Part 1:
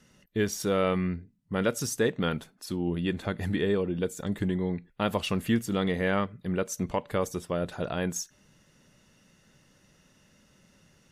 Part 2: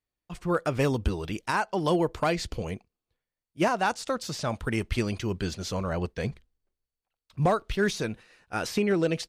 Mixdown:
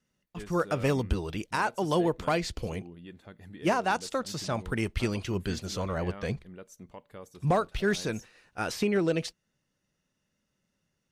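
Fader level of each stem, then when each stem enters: -17.5 dB, -1.5 dB; 0.00 s, 0.05 s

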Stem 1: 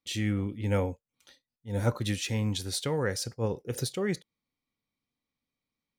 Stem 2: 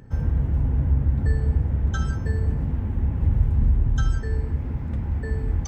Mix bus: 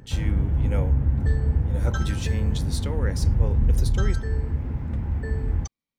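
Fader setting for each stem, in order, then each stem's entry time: -3.0 dB, -0.5 dB; 0.00 s, 0.00 s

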